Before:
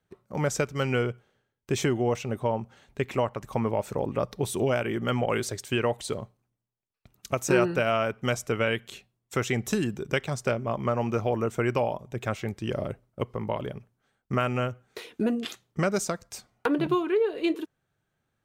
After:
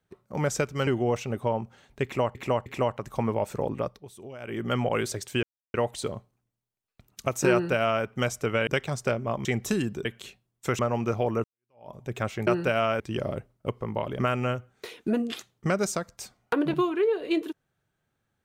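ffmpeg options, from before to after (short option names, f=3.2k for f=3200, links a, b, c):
-filter_complex "[0:a]asplit=15[a][b][c][d][e][f][g][h][i][j][k][l][m][n][o];[a]atrim=end=0.872[p];[b]atrim=start=1.858:end=3.342[q];[c]atrim=start=3.028:end=3.342[r];[d]atrim=start=3.028:end=4.39,asetpts=PTS-STARTPTS,afade=t=out:st=0.992:d=0.37:c=qsin:silence=0.141254[s];[e]atrim=start=4.39:end=4.76,asetpts=PTS-STARTPTS,volume=-17dB[t];[f]atrim=start=4.76:end=5.8,asetpts=PTS-STARTPTS,afade=t=in:d=0.37:c=qsin:silence=0.141254,afade=t=out:st=1.036:d=0.004:c=hsin,apad=pad_dur=0.31[u];[g]atrim=start=5.8:end=8.732,asetpts=PTS-STARTPTS,afade=t=in:d=0.004:c=hsin[v];[h]atrim=start=10.068:end=10.852[w];[i]atrim=start=9.468:end=10.072[x];[j]atrim=start=8.728:end=9.472[y];[k]atrim=start=10.848:end=11.5,asetpts=PTS-STARTPTS,afade=t=out:st=0.648:d=0.004:c=hsin[z];[l]atrim=start=11.5:end=12.532,asetpts=PTS-STARTPTS,afade=t=in:d=0.49:c=exp[aa];[m]atrim=start=7.578:end=8.112[ab];[n]atrim=start=12.528:end=13.722[ac];[o]atrim=start=14.318[ad];[p][q]acrossfade=d=0.004:c1=hsin:c2=hsin[ae];[ae][r]acrossfade=d=0.004:c1=hsin:c2=hsin[af];[s][t][u][v]concat=n=4:v=0:a=1[ag];[af][ag]acrossfade=d=0.004:c1=hsin:c2=hsin[ah];[ah][w]acrossfade=d=0.004:c1=hsin:c2=hsin[ai];[ai][x]acrossfade=d=0.004:c1=hsin:c2=hsin[aj];[aj][y]acrossfade=d=0.004:c1=hsin:c2=hsin[ak];[z][aa]concat=n=2:v=0:a=1[al];[ak][al]acrossfade=d=0.004:c1=hsin:c2=hsin[am];[am][ab]acrossfade=d=0.004:c1=hsin:c2=hsin[an];[an][ac]acrossfade=d=0.004:c1=hsin:c2=hsin[ao];[ao][ad]acrossfade=d=0.004:c1=hsin:c2=hsin"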